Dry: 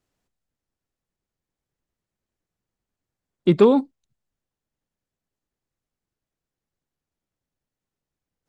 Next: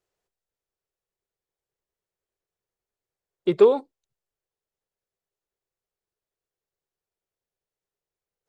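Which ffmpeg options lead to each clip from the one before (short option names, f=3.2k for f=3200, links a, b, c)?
-af "lowshelf=f=330:t=q:w=3:g=-6,volume=-4.5dB"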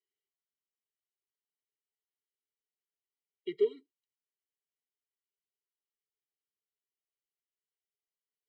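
-filter_complex "[0:a]asplit=3[a][b][c];[a]bandpass=f=530:t=q:w=8,volume=0dB[d];[b]bandpass=f=1.84k:t=q:w=8,volume=-6dB[e];[c]bandpass=f=2.48k:t=q:w=8,volume=-9dB[f];[d][e][f]amix=inputs=3:normalize=0,highshelf=f=2k:t=q:w=1.5:g=9.5,afftfilt=real='re*eq(mod(floor(b*sr/1024/470),2),0)':imag='im*eq(mod(floor(b*sr/1024/470),2),0)':win_size=1024:overlap=0.75"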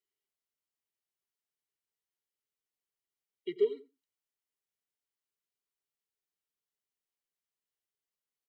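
-filter_complex "[0:a]asplit=2[a][b];[b]adelay=89,lowpass=f=1.1k:p=1,volume=-15dB,asplit=2[c][d];[d]adelay=89,lowpass=f=1.1k:p=1,volume=0.16[e];[a][c][e]amix=inputs=3:normalize=0"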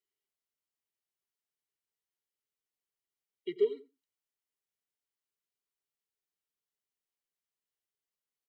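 -af anull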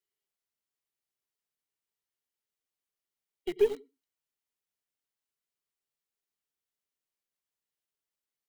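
-filter_complex "[0:a]asplit=2[a][b];[b]acrusher=bits=6:mix=0:aa=0.000001,volume=-7dB[c];[a][c]amix=inputs=2:normalize=0,aeval=exprs='0.188*(cos(1*acos(clip(val(0)/0.188,-1,1)))-cos(1*PI/2))+0.00944*(cos(8*acos(clip(val(0)/0.188,-1,1)))-cos(8*PI/2))':c=same"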